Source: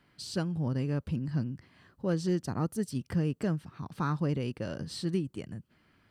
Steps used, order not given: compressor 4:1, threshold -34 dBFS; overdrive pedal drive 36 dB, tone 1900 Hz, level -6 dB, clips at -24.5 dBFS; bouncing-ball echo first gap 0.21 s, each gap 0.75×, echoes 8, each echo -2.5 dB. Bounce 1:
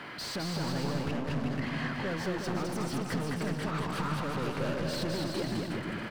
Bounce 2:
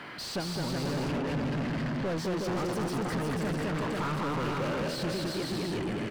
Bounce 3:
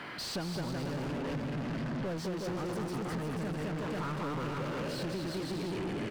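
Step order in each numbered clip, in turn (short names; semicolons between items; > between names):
overdrive pedal > compressor > bouncing-ball echo; compressor > bouncing-ball echo > overdrive pedal; bouncing-ball echo > overdrive pedal > compressor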